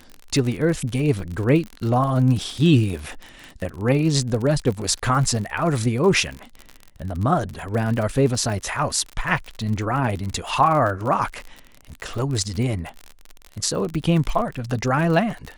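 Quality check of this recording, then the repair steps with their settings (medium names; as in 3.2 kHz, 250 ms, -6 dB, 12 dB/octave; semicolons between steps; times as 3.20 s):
crackle 47 per s -27 dBFS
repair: de-click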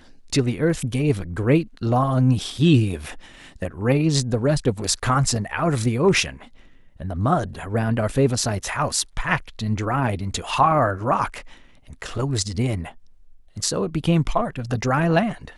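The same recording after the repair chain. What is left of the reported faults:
nothing left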